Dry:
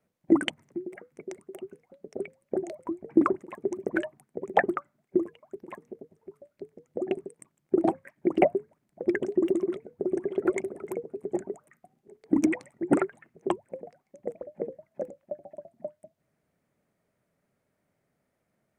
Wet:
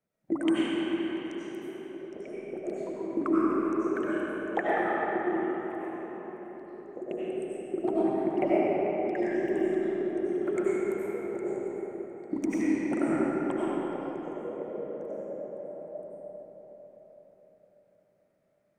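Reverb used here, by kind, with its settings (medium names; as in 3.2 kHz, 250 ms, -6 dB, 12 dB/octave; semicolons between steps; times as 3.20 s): algorithmic reverb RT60 4.6 s, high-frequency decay 0.65×, pre-delay 55 ms, DRR -9 dB; trim -9.5 dB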